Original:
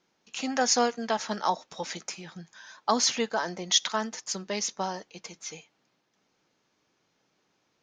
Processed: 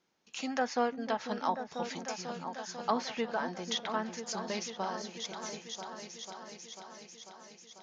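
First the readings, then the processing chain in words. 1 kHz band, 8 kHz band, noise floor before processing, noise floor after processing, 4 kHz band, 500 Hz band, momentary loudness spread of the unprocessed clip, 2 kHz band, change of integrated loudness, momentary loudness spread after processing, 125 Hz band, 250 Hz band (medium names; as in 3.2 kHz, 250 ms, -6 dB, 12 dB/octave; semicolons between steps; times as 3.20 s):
-4.0 dB, -13.0 dB, -74 dBFS, -59 dBFS, -9.5 dB, -4.0 dB, 17 LU, -4.5 dB, -8.0 dB, 14 LU, -4.0 dB, -3.5 dB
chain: delay with an opening low-pass 494 ms, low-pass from 400 Hz, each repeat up 2 oct, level -6 dB; low-pass that closes with the level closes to 2.5 kHz, closed at -22.5 dBFS; trim -5 dB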